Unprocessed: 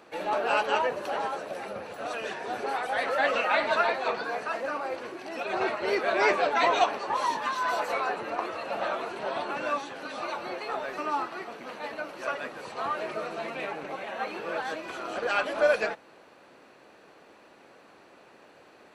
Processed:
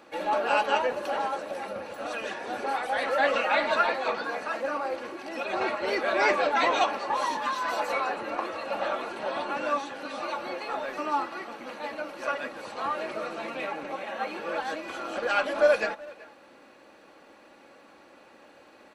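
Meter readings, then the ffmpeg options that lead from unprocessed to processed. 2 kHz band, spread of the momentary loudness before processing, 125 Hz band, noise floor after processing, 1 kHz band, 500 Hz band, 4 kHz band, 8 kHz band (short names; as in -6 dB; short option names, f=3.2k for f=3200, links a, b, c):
+0.5 dB, 12 LU, n/a, -54 dBFS, +0.5 dB, +1.0 dB, +0.5 dB, +0.5 dB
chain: -filter_complex "[0:a]aecho=1:1:3.6:0.41,asplit=2[a][b];[b]adelay=380,highpass=300,lowpass=3.4k,asoftclip=type=hard:threshold=-18.5dB,volume=-20dB[c];[a][c]amix=inputs=2:normalize=0"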